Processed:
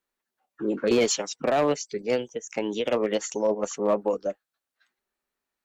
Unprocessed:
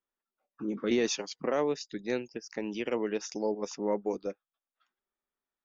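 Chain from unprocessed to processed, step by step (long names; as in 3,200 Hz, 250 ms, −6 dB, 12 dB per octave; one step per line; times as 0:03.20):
formants moved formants +3 semitones
asymmetric clip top −24 dBFS, bottom −19.5 dBFS
level +7 dB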